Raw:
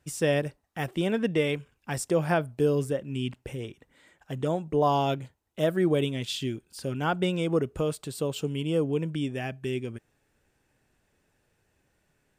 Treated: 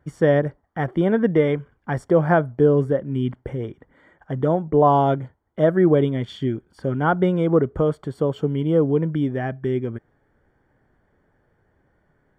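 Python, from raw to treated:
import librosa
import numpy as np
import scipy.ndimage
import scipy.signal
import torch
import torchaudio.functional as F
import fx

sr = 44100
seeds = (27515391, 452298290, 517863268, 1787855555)

y = scipy.signal.savgol_filter(x, 41, 4, mode='constant')
y = F.gain(torch.from_numpy(y), 8.0).numpy()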